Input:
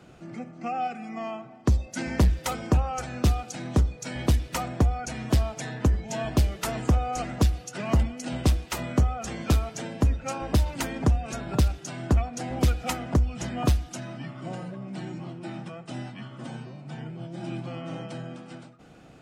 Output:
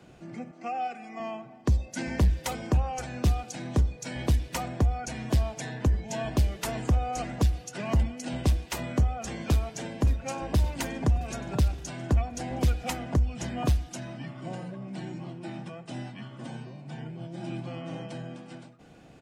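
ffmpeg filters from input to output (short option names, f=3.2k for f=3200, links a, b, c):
-filter_complex "[0:a]asettb=1/sr,asplit=3[a][b][c];[a]atrim=end=0.514[d];[b]atrim=start=0.51:end=1.2,asetpts=PTS-STARTPTS,afade=t=in:d=0.004:c=qsin,afade=t=out:st=0.686:d=0.004:c=qsin,highpass=310[e];[c]atrim=start=1.196[f];[d][e]acrossfade=d=0.004:c1=hsin:c2=qsin[g];[g][f]acrossfade=d=0.004:c1=qsin:c2=hsin,asplit=2[h][i];[i]afade=t=in:st=9.22:d=0.01,afade=t=out:st=10.34:d=0.01,aecho=0:1:570|1140|1710|2280|2850|3420|3990:0.158489|0.103018|0.0669617|0.0435251|0.0282913|0.0183894|0.0119531[j];[h][j]amix=inputs=2:normalize=0,bandreject=f=1.3k:w=8.5,acrossover=split=160[k][l];[l]acompressor=threshold=-24dB:ratio=6[m];[k][m]amix=inputs=2:normalize=0,volume=-1.5dB"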